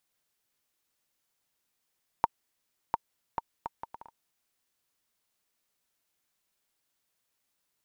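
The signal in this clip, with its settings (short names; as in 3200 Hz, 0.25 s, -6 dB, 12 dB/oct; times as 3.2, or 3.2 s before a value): bouncing ball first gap 0.70 s, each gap 0.63, 924 Hz, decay 28 ms -9.5 dBFS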